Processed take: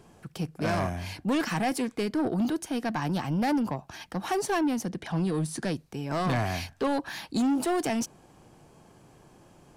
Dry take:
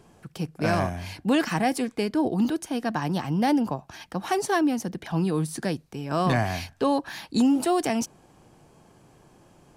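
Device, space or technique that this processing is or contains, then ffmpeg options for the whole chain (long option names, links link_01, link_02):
saturation between pre-emphasis and de-emphasis: -filter_complex "[0:a]asettb=1/sr,asplit=3[link_01][link_02][link_03];[link_01]atrim=end=4.854[link_04];[link_02]atrim=start=4.85:end=5.75,asetpts=PTS-STARTPTS,afade=type=in:duration=0.004:curve=qsin,afade=type=out:start_time=0.896:duration=0.004:curve=qsin,lowpass=frequency=11000:width=0.5412,lowpass=frequency=11000:width=1.3066[link_05];[link_03]atrim=start=5.746[link_06];[link_04][link_05]acrossfade=duration=0.004:curve1=hsin:curve2=qsin[link_07];[link_07][link_06]acrossfade=duration=0.004:curve1=qsin:curve2=hsin,highshelf=frequency=6600:gain=7,asoftclip=type=tanh:threshold=-21.5dB,highshelf=frequency=6600:gain=-7"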